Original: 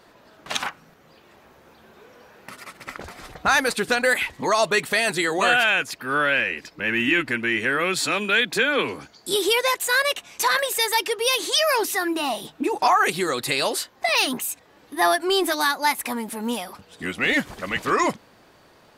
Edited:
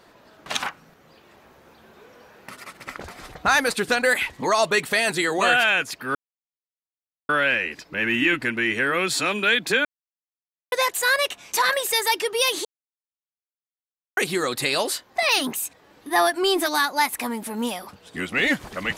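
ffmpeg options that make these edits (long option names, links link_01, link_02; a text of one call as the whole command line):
ffmpeg -i in.wav -filter_complex "[0:a]asplit=6[link_01][link_02][link_03][link_04][link_05][link_06];[link_01]atrim=end=6.15,asetpts=PTS-STARTPTS,afade=type=out:start_time=6.146:duration=0.004:curve=hsin,apad=pad_dur=1.14[link_07];[link_02]atrim=start=6.15:end=8.71,asetpts=PTS-STARTPTS,afade=type=in:duration=0.004:curve=hsin,afade=type=out:start_time=2.556:duration=0.004:curve=hsin[link_08];[link_03]atrim=start=8.71:end=9.58,asetpts=PTS-STARTPTS,volume=0[link_09];[link_04]atrim=start=9.58:end=11.51,asetpts=PTS-STARTPTS,afade=type=in:duration=0.004:curve=hsin,afade=type=out:start_time=1.926:duration=0.004:curve=hsin[link_10];[link_05]atrim=start=11.51:end=13.03,asetpts=PTS-STARTPTS,volume=0[link_11];[link_06]atrim=start=13.03,asetpts=PTS-STARTPTS,afade=type=in:duration=0.004:curve=hsin[link_12];[link_07][link_08][link_09][link_10][link_11][link_12]concat=n=6:v=0:a=1" out.wav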